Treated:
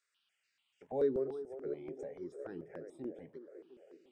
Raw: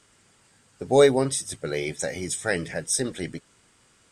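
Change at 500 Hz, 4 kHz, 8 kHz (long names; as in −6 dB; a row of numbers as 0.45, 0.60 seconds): −14.0 dB, below −35 dB, below −40 dB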